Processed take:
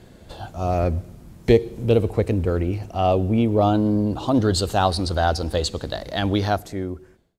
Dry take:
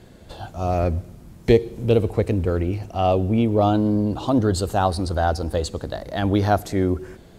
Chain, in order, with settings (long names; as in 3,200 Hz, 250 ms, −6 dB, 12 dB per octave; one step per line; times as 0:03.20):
fade-out on the ending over 1.31 s
0:04.34–0:06.57: parametric band 3,700 Hz +7.5 dB 1.7 octaves